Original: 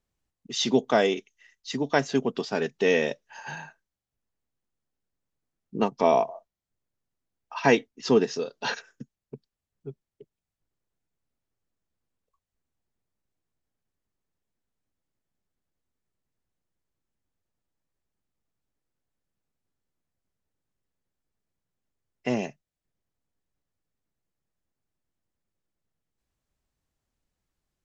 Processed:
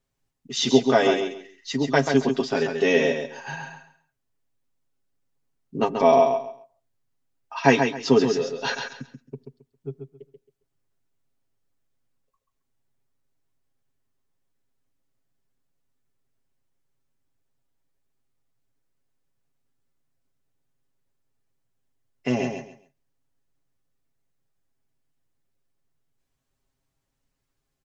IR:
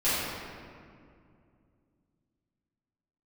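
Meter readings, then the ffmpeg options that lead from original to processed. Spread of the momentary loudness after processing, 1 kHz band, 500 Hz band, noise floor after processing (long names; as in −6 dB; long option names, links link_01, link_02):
20 LU, +4.0 dB, +4.0 dB, −78 dBFS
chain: -filter_complex "[0:a]aecho=1:1:7.4:0.67,aecho=1:1:135|270|405:0.501|0.115|0.0265,asplit=2[link_01][link_02];[1:a]atrim=start_sample=2205,atrim=end_sample=6174,lowpass=2500[link_03];[link_02][link_03]afir=irnorm=-1:irlink=0,volume=-34.5dB[link_04];[link_01][link_04]amix=inputs=2:normalize=0,volume=1dB"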